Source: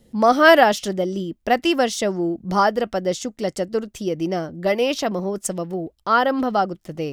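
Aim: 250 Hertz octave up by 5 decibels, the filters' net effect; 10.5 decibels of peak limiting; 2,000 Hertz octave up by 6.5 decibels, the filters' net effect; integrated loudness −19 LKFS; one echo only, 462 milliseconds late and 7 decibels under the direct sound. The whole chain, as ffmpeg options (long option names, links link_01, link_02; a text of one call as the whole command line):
ffmpeg -i in.wav -af "equalizer=frequency=250:width_type=o:gain=6.5,equalizer=frequency=2000:width_type=o:gain=8.5,alimiter=limit=-8.5dB:level=0:latency=1,aecho=1:1:462:0.447,volume=0.5dB" out.wav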